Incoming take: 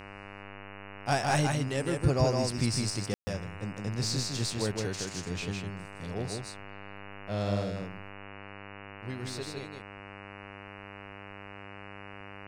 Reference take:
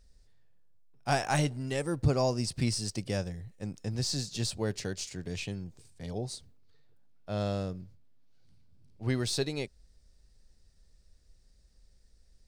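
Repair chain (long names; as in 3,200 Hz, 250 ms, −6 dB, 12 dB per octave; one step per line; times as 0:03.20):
hum removal 99.8 Hz, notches 29
ambience match 0:03.14–0:03.27
echo removal 158 ms −3.5 dB
level 0 dB, from 0:08.10 +9 dB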